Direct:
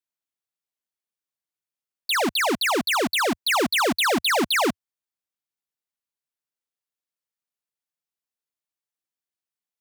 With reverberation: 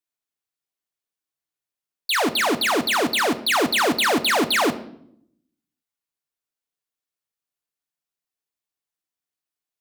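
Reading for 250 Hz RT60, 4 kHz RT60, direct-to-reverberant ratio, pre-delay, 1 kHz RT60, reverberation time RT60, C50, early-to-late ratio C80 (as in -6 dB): 1.0 s, 0.55 s, 8.0 dB, 3 ms, 0.60 s, 0.70 s, 14.5 dB, 18.0 dB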